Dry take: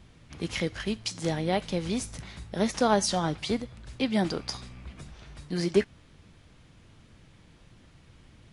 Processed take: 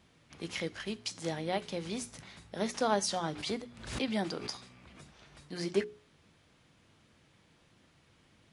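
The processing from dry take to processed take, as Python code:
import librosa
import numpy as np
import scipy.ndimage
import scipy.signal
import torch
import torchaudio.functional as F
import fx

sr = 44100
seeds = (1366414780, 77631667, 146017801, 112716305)

y = fx.highpass(x, sr, hz=210.0, slope=6)
y = fx.hum_notches(y, sr, base_hz=60, count=7)
y = fx.pre_swell(y, sr, db_per_s=82.0, at=(3.29, 5.46))
y = F.gain(torch.from_numpy(y), -5.0).numpy()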